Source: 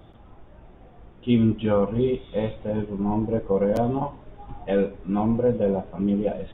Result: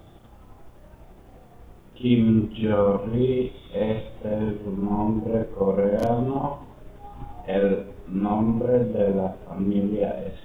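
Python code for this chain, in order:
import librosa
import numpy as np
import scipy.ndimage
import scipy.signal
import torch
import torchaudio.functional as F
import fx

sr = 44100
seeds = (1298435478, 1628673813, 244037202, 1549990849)

y = fx.stretch_grains(x, sr, factor=1.6, grain_ms=170.0)
y = fx.quant_dither(y, sr, seeds[0], bits=12, dither='triangular')
y = F.gain(torch.from_numpy(y), 1.5).numpy()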